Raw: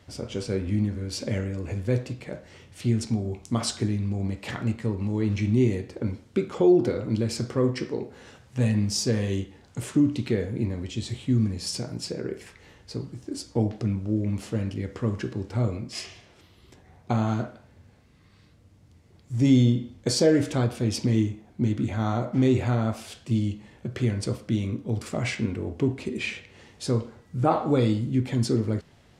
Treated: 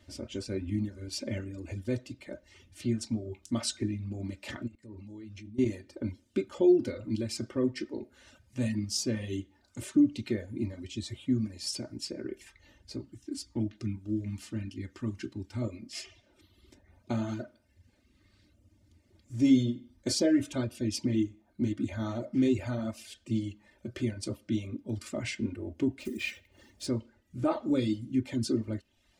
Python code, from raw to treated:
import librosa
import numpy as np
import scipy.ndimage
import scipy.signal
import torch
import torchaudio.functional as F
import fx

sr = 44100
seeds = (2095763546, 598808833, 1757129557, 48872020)

y = fx.level_steps(x, sr, step_db=19, at=(4.66, 5.64), fade=0.02)
y = fx.peak_eq(y, sr, hz=550.0, db=-11.0, octaves=0.77, at=(13.15, 15.62))
y = fx.block_float(y, sr, bits=5, at=(25.99, 26.85), fade=0.02)
y = fx.dereverb_blind(y, sr, rt60_s=0.73)
y = fx.peak_eq(y, sr, hz=980.0, db=-6.5, octaves=1.2)
y = y + 0.75 * np.pad(y, (int(3.3 * sr / 1000.0), 0))[:len(y)]
y = y * librosa.db_to_amplitude(-5.5)